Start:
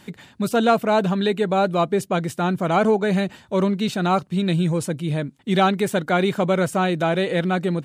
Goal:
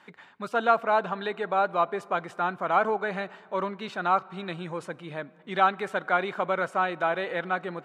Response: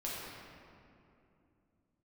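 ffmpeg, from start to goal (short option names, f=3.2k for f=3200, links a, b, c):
-filter_complex "[0:a]bandpass=f=1.2k:t=q:w=1.3:csg=0,asplit=2[a][b];[1:a]atrim=start_sample=2205[c];[b][c]afir=irnorm=-1:irlink=0,volume=-23dB[d];[a][d]amix=inputs=2:normalize=0"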